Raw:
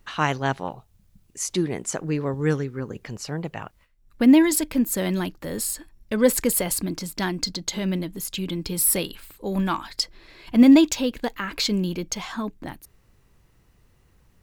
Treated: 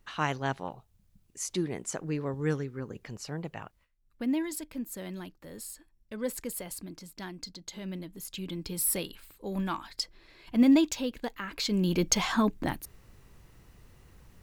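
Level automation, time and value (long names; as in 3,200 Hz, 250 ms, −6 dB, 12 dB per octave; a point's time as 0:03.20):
0:03.58 −7 dB
0:04.28 −15 dB
0:07.58 −15 dB
0:08.58 −8 dB
0:11.63 −8 dB
0:12.03 +4 dB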